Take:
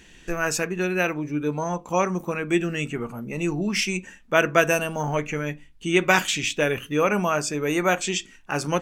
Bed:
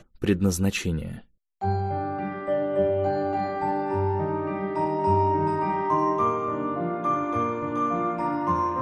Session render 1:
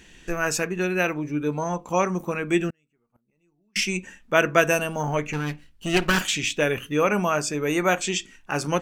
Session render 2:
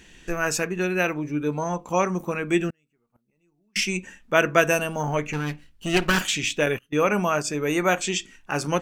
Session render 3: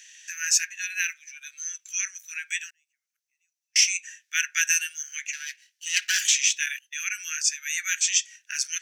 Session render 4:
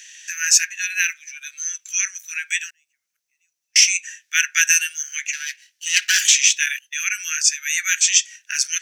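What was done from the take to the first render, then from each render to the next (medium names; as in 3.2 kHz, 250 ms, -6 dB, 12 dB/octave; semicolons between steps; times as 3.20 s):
2.70–3.76 s: inverted gate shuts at -27 dBFS, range -42 dB; 5.33–6.21 s: comb filter that takes the minimum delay 0.67 ms
6.66–7.48 s: gate -30 dBFS, range -24 dB
steep high-pass 1.6 kHz 72 dB/octave; peaking EQ 6 kHz +12.5 dB 0.49 oct
trim +7 dB; peak limiter -1 dBFS, peak gain reduction 2 dB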